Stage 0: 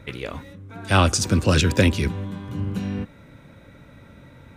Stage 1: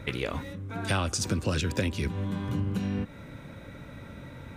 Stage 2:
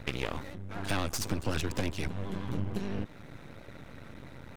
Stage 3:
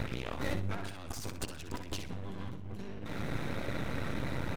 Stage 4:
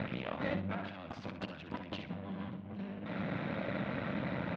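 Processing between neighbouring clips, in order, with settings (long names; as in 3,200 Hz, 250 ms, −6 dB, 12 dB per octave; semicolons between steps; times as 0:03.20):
downward compressor 6 to 1, threshold −29 dBFS, peak gain reduction 16 dB; level +3 dB
pitch vibrato 12 Hz 56 cents; half-wave rectification
compressor whose output falls as the input rises −43 dBFS, ratio −1; on a send: repeating echo 63 ms, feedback 26%, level −9 dB; on the sum: level +4 dB
loudspeaker in its box 140–3,400 Hz, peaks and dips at 190 Hz +7 dB, 400 Hz −6 dB, 610 Hz +5 dB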